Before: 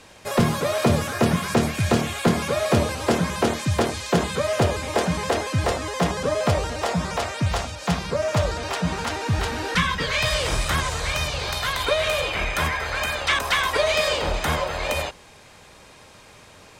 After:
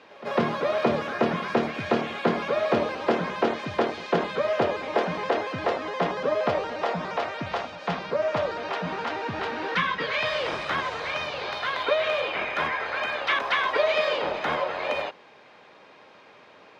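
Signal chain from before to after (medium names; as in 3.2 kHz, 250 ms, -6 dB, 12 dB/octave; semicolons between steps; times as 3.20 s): high-pass 290 Hz 12 dB/octave; distance through air 270 m; pre-echo 152 ms -19.5 dB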